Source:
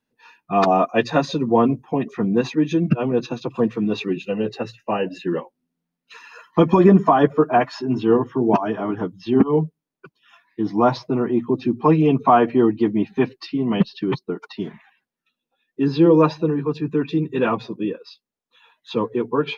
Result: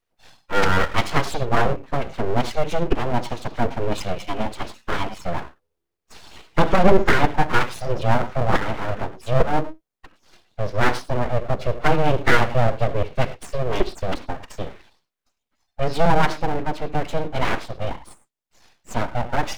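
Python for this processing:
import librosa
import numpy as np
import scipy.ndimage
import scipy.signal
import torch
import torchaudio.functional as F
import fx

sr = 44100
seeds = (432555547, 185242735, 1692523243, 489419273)

y = fx.rev_gated(x, sr, seeds[0], gate_ms=130, shape='flat', drr_db=11.0)
y = np.abs(y)
y = F.gain(torch.from_numpy(y), 1.0).numpy()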